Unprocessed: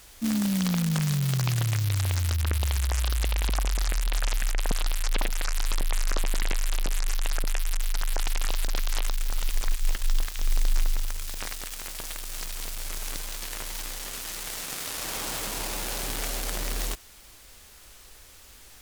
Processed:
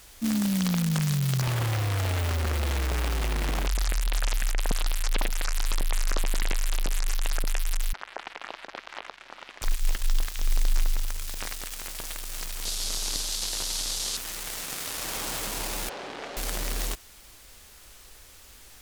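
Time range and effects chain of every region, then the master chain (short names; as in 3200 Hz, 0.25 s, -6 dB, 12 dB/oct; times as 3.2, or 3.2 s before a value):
1.42–3.67 tone controls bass -10 dB, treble -14 dB + companded quantiser 2-bit
7.93–9.62 BPF 340–2200 Hz + notch 450 Hz, Q 6.5
12.65–14.17 delta modulation 64 kbps, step -38 dBFS + resonant high shelf 3000 Hz +10.5 dB, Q 1.5
15.89–16.37 BPF 430–4300 Hz + tilt -3 dB/oct
whole clip: dry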